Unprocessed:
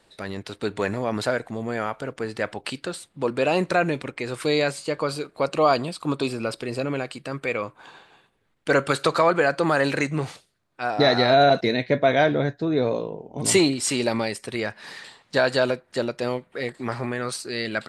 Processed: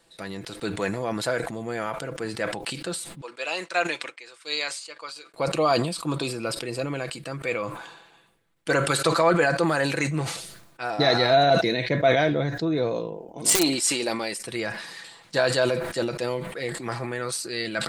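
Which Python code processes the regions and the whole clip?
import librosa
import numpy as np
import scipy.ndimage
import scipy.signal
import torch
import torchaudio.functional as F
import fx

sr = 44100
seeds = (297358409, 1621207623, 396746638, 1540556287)

y = fx.chain(x, sr, fx.bandpass_edges(low_hz=320.0, high_hz=7200.0),
    fx.tilt_shelf(db=-8.5, hz=730.0),
    fx.upward_expand(threshold_db=-42.0, expansion=2.5), at=(3.21, 5.34))
y = fx.chain(y, sr, fx.peak_eq(hz=120.0, db=-11.5, octaves=1.2),
    fx.overflow_wrap(gain_db=10.0),
    fx.transformer_sat(knee_hz=280.0), at=(13.14, 14.41))
y = fx.high_shelf(y, sr, hz=6200.0, db=8.5)
y = y + 0.42 * np.pad(y, (int(6.0 * sr / 1000.0), 0))[:len(y)]
y = fx.sustainer(y, sr, db_per_s=58.0)
y = F.gain(torch.from_numpy(y), -3.5).numpy()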